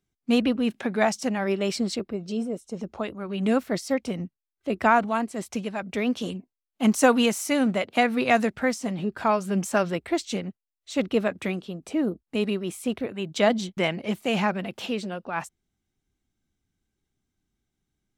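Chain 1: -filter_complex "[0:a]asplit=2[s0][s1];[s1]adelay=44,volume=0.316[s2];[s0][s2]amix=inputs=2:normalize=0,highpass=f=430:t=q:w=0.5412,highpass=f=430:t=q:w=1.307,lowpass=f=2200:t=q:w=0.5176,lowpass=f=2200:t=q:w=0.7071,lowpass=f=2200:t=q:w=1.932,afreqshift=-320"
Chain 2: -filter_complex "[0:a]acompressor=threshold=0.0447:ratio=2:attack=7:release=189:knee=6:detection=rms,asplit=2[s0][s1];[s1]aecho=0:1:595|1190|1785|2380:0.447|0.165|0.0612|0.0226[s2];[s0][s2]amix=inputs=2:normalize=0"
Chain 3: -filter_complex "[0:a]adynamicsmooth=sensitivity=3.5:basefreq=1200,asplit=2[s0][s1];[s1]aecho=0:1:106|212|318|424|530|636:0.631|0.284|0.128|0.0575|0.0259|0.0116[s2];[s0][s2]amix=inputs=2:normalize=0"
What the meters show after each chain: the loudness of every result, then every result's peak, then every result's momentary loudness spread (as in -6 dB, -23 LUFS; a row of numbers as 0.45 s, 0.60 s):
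-29.5 LUFS, -30.5 LUFS, -24.5 LUFS; -7.0 dBFS, -11.5 dBFS, -4.5 dBFS; 16 LU, 8 LU, 11 LU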